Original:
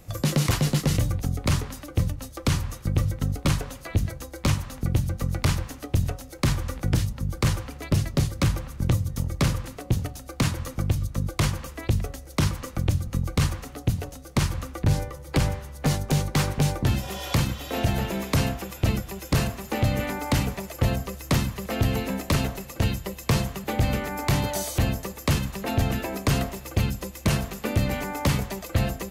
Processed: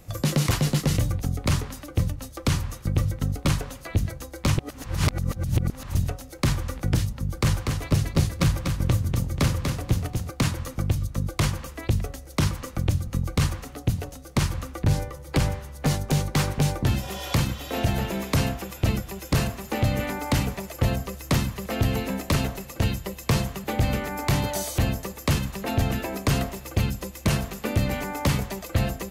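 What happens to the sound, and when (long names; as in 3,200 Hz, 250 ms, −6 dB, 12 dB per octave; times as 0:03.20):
0:04.58–0:05.95: reverse
0:07.23–0:10.30: repeating echo 242 ms, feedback 36%, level −5 dB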